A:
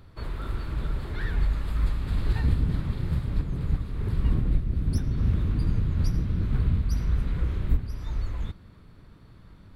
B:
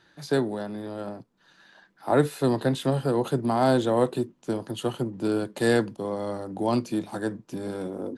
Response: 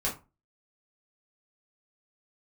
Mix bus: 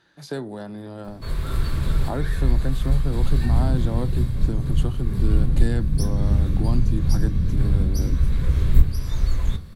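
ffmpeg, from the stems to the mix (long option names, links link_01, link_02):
-filter_complex "[0:a]bass=frequency=250:gain=2,treble=frequency=4000:gain=12,adelay=1050,volume=3dB,asplit=2[link_01][link_02];[link_02]volume=-12dB[link_03];[1:a]asubboost=boost=6:cutoff=200,acompressor=threshold=-26dB:ratio=2.5,volume=-1.5dB,asplit=2[link_04][link_05];[link_05]apad=whole_len=476530[link_06];[link_01][link_06]sidechaincompress=threshold=-37dB:ratio=8:attack=16:release=783[link_07];[2:a]atrim=start_sample=2205[link_08];[link_03][link_08]afir=irnorm=-1:irlink=0[link_09];[link_07][link_04][link_09]amix=inputs=3:normalize=0"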